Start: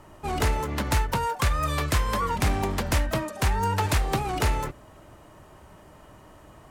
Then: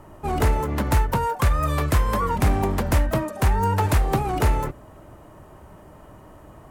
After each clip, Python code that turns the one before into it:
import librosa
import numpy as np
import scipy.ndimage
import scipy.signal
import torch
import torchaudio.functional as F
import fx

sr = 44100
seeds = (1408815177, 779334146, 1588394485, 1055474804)

y = fx.peak_eq(x, sr, hz=4400.0, db=-9.0, octaves=2.7)
y = y * librosa.db_to_amplitude(5.0)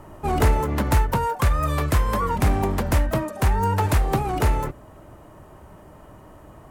y = fx.rider(x, sr, range_db=4, speed_s=2.0)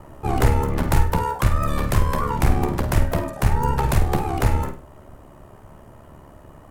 y = fx.octave_divider(x, sr, octaves=2, level_db=-1.0)
y = y * np.sin(2.0 * np.pi * 35.0 * np.arange(len(y)) / sr)
y = fx.room_flutter(y, sr, wall_m=8.7, rt60_s=0.33)
y = y * librosa.db_to_amplitude(2.0)